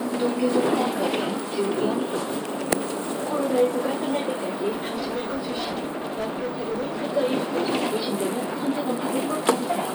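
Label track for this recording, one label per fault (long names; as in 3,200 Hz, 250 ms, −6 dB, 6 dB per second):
4.690000	7.030000	clipping −24 dBFS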